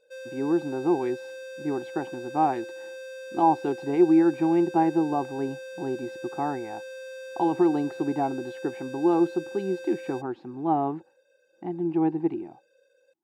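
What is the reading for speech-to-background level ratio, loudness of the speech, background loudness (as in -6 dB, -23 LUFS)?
13.5 dB, -26.5 LUFS, -40.0 LUFS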